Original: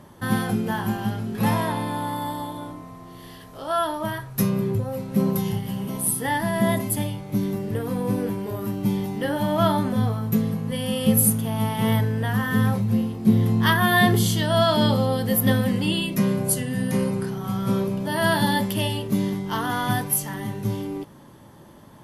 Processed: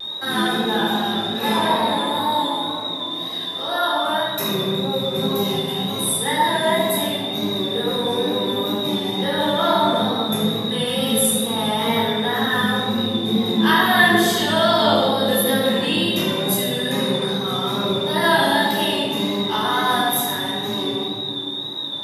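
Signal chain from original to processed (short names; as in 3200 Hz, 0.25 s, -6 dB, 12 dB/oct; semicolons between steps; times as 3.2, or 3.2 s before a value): HPF 360 Hz 12 dB/oct; high shelf 10000 Hz -4 dB; in parallel at 0 dB: compressor, threshold -33 dBFS, peak gain reduction 16.5 dB; on the sum: whine 3700 Hz -28 dBFS; wow and flutter 73 cents; reverb RT60 1.7 s, pre-delay 14 ms, DRR -6.5 dB; gain -5.5 dB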